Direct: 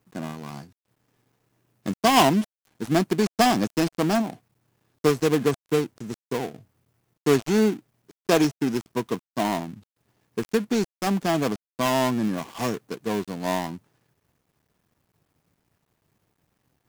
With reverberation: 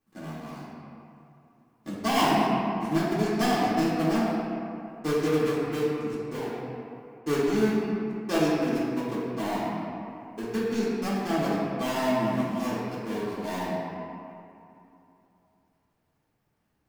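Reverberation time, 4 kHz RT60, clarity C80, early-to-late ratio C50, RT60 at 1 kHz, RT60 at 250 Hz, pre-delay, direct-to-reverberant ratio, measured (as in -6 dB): 2.8 s, 1.5 s, -0.5 dB, -2.5 dB, 2.9 s, 3.0 s, 3 ms, -10.0 dB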